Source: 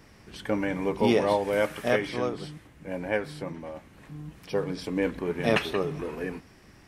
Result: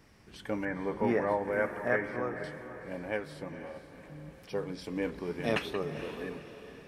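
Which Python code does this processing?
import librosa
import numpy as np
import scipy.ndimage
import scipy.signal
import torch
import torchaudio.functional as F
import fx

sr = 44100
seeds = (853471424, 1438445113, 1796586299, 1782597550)

y = fx.high_shelf_res(x, sr, hz=2400.0, db=-10.5, q=3.0, at=(0.65, 2.44))
y = fx.echo_diffused(y, sr, ms=483, feedback_pct=46, wet_db=-11.5)
y = F.gain(torch.from_numpy(y), -6.5).numpy()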